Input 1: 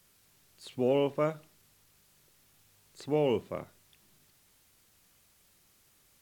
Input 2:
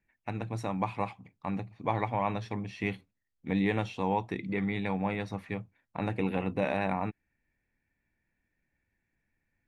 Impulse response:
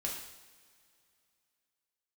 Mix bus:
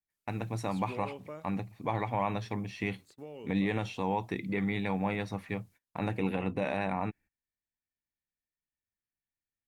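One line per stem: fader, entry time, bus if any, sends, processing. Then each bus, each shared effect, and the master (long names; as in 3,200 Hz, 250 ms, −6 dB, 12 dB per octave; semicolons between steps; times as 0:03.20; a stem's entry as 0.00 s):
−5.0 dB, 0.10 s, no send, downward compressor 3 to 1, threshold −30 dBFS, peak gain reduction 6.5 dB; automatic ducking −8 dB, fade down 1.90 s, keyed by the second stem
0.0 dB, 0.00 s, no send, no processing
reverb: not used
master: noise gate −55 dBFS, range −22 dB; high-shelf EQ 5,600 Hz +4.5 dB; brickwall limiter −19 dBFS, peak gain reduction 4 dB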